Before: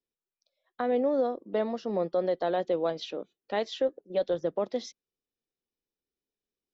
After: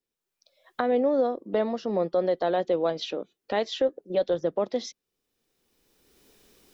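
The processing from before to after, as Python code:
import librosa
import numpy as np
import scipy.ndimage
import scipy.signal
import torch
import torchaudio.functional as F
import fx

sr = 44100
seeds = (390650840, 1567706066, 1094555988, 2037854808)

y = fx.recorder_agc(x, sr, target_db=-25.0, rise_db_per_s=20.0, max_gain_db=30)
y = F.gain(torch.from_numpy(y), 3.0).numpy()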